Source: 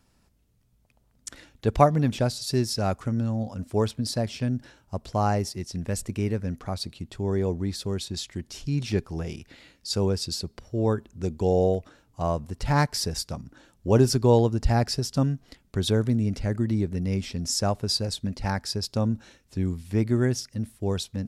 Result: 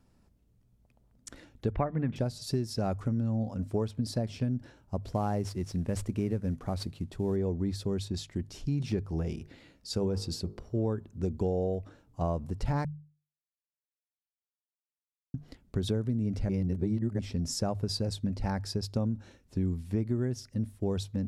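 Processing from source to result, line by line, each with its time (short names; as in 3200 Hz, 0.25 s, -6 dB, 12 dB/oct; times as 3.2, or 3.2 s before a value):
1.72–2.16 EQ curve 760 Hz 0 dB, 2000 Hz +8 dB, 8500 Hz -27 dB
5.03–7.36 CVSD 64 kbps
9.29–10.77 de-hum 51.25 Hz, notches 28
12.85–15.34 mute
16.49–17.19 reverse
whole clip: tilt shelf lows +5 dB; notches 50/100/150 Hz; compressor 12:1, threshold -22 dBFS; gain -3.5 dB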